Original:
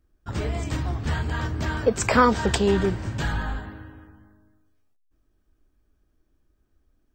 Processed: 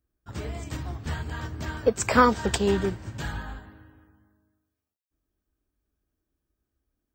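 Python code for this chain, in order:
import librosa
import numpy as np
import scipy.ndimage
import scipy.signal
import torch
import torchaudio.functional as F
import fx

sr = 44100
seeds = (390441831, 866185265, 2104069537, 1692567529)

y = scipy.signal.sosfilt(scipy.signal.butter(2, 43.0, 'highpass', fs=sr, output='sos'), x)
y = fx.high_shelf(y, sr, hz=10000.0, db=10.5)
y = fx.upward_expand(y, sr, threshold_db=-33.0, expansion=1.5)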